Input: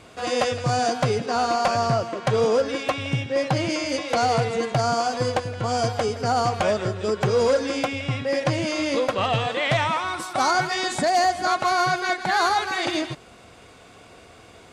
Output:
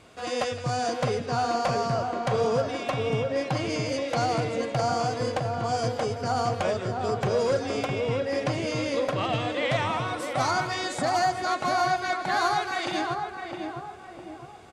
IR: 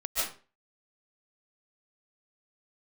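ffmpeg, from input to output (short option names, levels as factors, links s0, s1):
-filter_complex "[0:a]asplit=2[s0][s1];[s1]adelay=659,lowpass=f=1200:p=1,volume=0.708,asplit=2[s2][s3];[s3]adelay=659,lowpass=f=1200:p=1,volume=0.48,asplit=2[s4][s5];[s5]adelay=659,lowpass=f=1200:p=1,volume=0.48,asplit=2[s6][s7];[s7]adelay=659,lowpass=f=1200:p=1,volume=0.48,asplit=2[s8][s9];[s9]adelay=659,lowpass=f=1200:p=1,volume=0.48,asplit=2[s10][s11];[s11]adelay=659,lowpass=f=1200:p=1,volume=0.48[s12];[s0][s2][s4][s6][s8][s10][s12]amix=inputs=7:normalize=0,volume=0.531"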